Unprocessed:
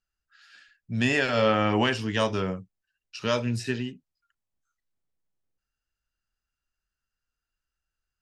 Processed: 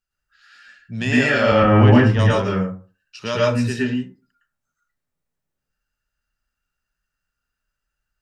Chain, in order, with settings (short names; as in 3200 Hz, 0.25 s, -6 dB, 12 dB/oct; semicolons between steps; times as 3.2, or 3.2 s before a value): 1.52–2.19 RIAA curve playback; reverb RT60 0.35 s, pre-delay 0.102 s, DRR -6 dB